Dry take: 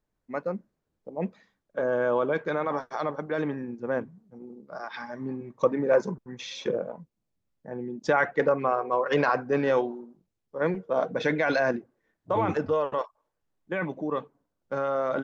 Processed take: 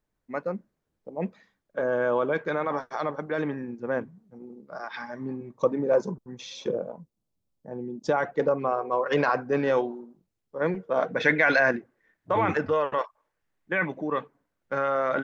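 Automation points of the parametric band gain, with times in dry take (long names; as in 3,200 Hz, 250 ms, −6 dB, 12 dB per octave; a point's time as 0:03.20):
parametric band 1,900 Hz 1.1 octaves
0:05.11 +2 dB
0:05.79 −8.5 dB
0:08.55 −8.5 dB
0:09.09 0 dB
0:10.67 0 dB
0:11.10 +9.5 dB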